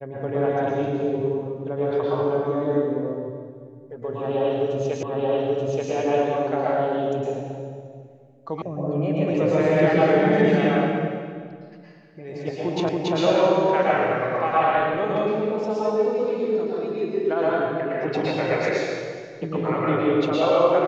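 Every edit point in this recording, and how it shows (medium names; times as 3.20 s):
5.03 s: repeat of the last 0.88 s
8.62 s: sound stops dead
12.89 s: repeat of the last 0.28 s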